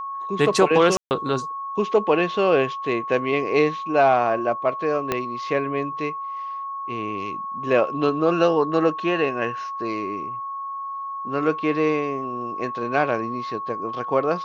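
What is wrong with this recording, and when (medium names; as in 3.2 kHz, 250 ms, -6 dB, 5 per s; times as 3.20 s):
whine 1.1 kHz -28 dBFS
0.97–1.11 s: dropout 139 ms
5.12 s: pop -8 dBFS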